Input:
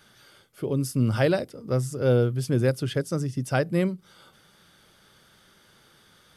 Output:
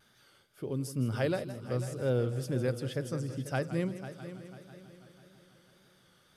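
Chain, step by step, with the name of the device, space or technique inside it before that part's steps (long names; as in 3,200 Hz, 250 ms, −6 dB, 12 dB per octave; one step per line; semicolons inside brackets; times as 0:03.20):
multi-head tape echo (echo machine with several playback heads 164 ms, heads first and third, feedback 57%, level −13.5 dB; tape wow and flutter)
level −8.5 dB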